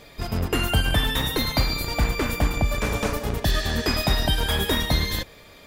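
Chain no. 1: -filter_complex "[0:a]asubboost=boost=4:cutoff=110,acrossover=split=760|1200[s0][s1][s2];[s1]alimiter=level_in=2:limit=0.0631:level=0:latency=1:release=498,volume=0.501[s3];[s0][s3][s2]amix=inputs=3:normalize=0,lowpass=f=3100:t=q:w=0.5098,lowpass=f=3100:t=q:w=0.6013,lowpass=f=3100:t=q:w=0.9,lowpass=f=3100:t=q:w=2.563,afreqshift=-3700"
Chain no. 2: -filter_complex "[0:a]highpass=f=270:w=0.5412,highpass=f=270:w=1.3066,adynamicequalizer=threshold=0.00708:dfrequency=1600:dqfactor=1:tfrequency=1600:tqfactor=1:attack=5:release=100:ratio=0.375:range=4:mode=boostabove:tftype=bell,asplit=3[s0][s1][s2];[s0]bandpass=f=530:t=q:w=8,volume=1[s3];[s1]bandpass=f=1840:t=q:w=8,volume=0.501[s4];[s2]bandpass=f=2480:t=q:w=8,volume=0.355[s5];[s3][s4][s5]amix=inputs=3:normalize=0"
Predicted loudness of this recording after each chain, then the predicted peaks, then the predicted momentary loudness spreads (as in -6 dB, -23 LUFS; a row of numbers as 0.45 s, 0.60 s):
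-13.5 LUFS, -34.0 LUFS; -2.5 dBFS, -19.0 dBFS; 9 LU, 6 LU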